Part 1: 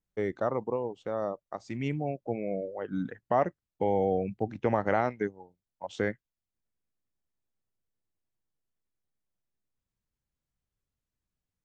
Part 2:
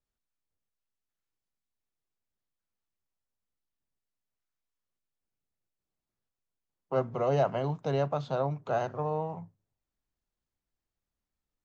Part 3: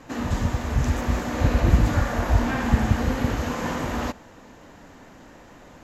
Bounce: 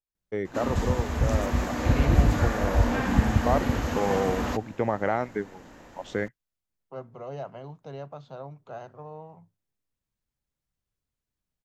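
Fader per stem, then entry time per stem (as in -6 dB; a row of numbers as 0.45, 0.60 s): +0.5, -10.5, -2.0 dB; 0.15, 0.00, 0.45 s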